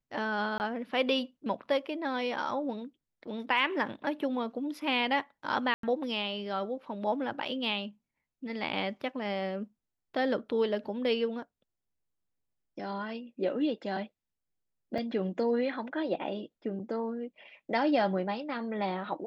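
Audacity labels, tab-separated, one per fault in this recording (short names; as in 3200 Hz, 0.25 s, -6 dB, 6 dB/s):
0.580000	0.600000	gap 19 ms
5.740000	5.830000	gap 93 ms
14.980000	14.980000	gap 3.7 ms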